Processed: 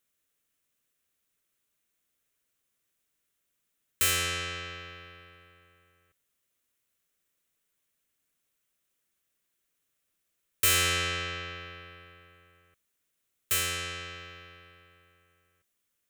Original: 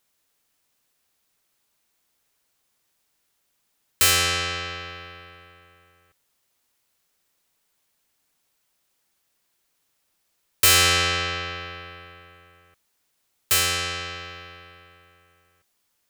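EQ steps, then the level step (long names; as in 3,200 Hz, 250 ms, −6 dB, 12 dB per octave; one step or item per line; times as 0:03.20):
parametric band 850 Hz −10 dB 0.56 octaves
parametric band 4,700 Hz −7 dB 0.51 octaves
−6.5 dB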